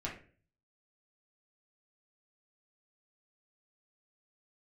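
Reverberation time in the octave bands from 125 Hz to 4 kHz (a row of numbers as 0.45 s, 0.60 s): 0.70 s, 0.50 s, 0.50 s, 0.35 s, 0.40 s, 0.30 s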